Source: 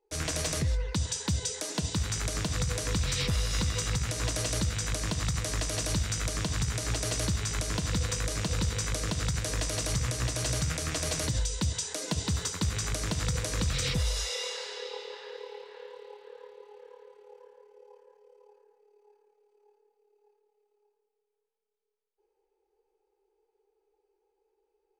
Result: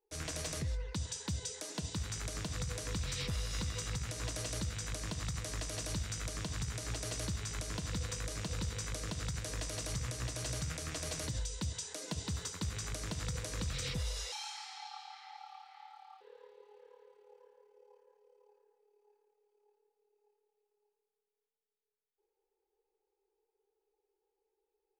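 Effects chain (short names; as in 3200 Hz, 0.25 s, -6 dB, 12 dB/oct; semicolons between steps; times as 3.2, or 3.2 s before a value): 14.32–16.21 frequency shift +350 Hz; gain -8.5 dB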